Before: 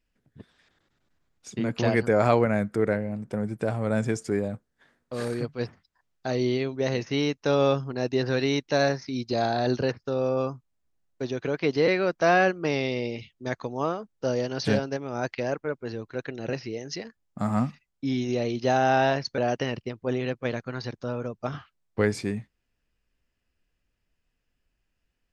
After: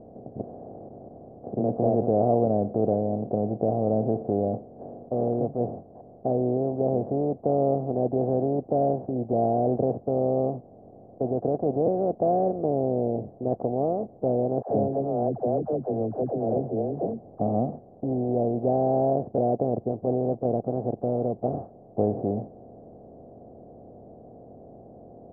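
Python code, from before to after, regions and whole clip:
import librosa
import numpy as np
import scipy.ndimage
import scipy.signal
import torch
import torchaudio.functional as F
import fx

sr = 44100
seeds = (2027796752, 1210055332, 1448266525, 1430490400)

y = fx.chain(x, sr, fx.dispersion(late='lows', ms=85.0, hz=470.0),
    fx.band_squash(depth_pct=40), at=(14.62, 17.4))
y = fx.bin_compress(y, sr, power=0.4)
y = scipy.signal.sosfilt(scipy.signal.ellip(4, 1.0, 70, 730.0, 'lowpass', fs=sr, output='sos'), y)
y = y * librosa.db_to_amplitude(-4.0)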